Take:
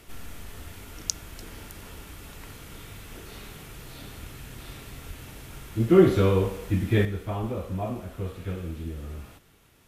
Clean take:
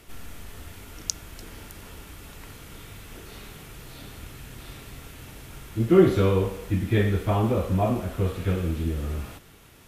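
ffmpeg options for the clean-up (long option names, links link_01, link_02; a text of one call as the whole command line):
ffmpeg -i in.wav -filter_complex "[0:a]asplit=3[link_01][link_02][link_03];[link_01]afade=type=out:start_time=5.07:duration=0.02[link_04];[link_02]highpass=frequency=140:width=0.5412,highpass=frequency=140:width=1.3066,afade=type=in:start_time=5.07:duration=0.02,afade=type=out:start_time=5.19:duration=0.02[link_05];[link_03]afade=type=in:start_time=5.19:duration=0.02[link_06];[link_04][link_05][link_06]amix=inputs=3:normalize=0,asplit=3[link_07][link_08][link_09];[link_07]afade=type=out:start_time=7.4:duration=0.02[link_10];[link_08]highpass=frequency=140:width=0.5412,highpass=frequency=140:width=1.3066,afade=type=in:start_time=7.4:duration=0.02,afade=type=out:start_time=7.52:duration=0.02[link_11];[link_09]afade=type=in:start_time=7.52:duration=0.02[link_12];[link_10][link_11][link_12]amix=inputs=3:normalize=0,asetnsamples=nb_out_samples=441:pad=0,asendcmd='7.05 volume volume 7.5dB',volume=0dB" out.wav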